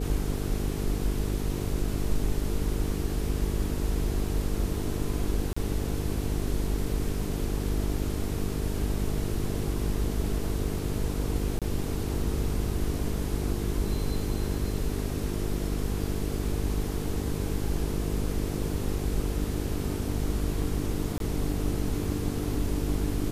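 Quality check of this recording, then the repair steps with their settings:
mains buzz 50 Hz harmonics 9 −32 dBFS
0:05.53–0:05.57: drop-out 35 ms
0:11.59–0:11.62: drop-out 27 ms
0:21.18–0:21.20: drop-out 22 ms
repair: hum removal 50 Hz, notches 9
repair the gap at 0:05.53, 35 ms
repair the gap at 0:11.59, 27 ms
repair the gap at 0:21.18, 22 ms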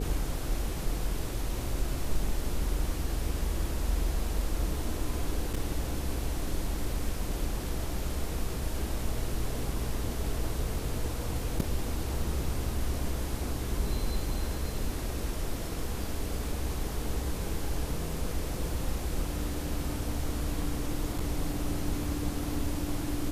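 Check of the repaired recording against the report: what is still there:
none of them is left

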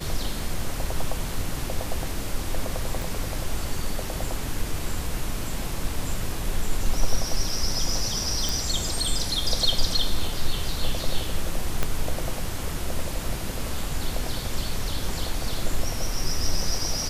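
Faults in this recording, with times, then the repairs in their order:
0:03.02: click
0:08.49: click
0:11.83: click −9 dBFS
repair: click removal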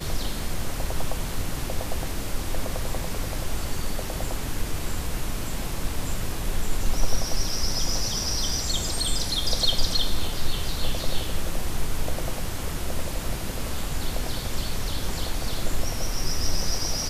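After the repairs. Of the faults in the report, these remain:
0:03.02: click
0:11.83: click

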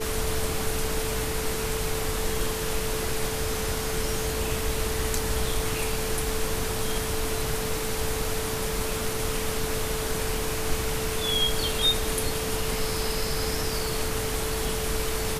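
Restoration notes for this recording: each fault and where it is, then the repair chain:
whistle 440 Hz −32 dBFS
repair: notch filter 440 Hz, Q 30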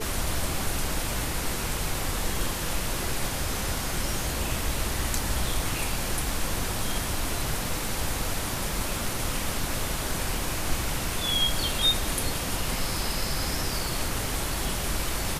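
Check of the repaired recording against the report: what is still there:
none of them is left

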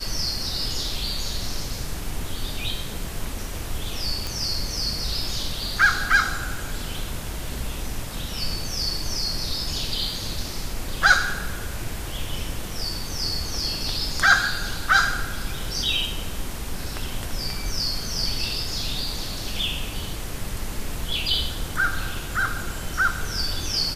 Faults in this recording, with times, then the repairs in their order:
0:04.27: click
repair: click removal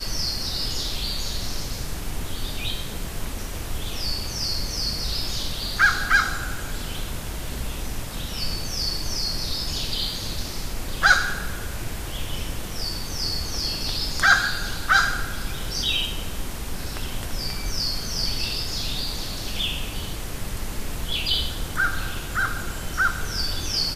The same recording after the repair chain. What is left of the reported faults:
none of them is left

